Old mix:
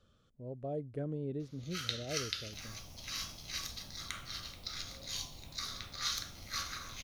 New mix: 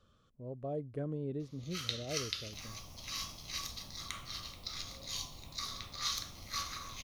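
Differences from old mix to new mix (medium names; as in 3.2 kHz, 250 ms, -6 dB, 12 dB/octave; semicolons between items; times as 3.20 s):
first sound: add peaking EQ 1.5 kHz -8.5 dB 0.4 oct; master: add peaking EQ 1.1 kHz +7 dB 0.3 oct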